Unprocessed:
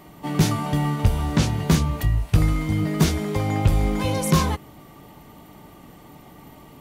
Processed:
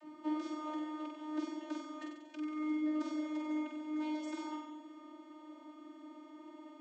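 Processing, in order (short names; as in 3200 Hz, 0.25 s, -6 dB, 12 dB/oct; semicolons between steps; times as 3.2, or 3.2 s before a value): compressor, threshold -27 dBFS, peak gain reduction 15 dB; vocoder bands 32, saw 306 Hz; on a send: flutter echo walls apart 8 m, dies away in 0.96 s; on the sum: gain -5.5 dB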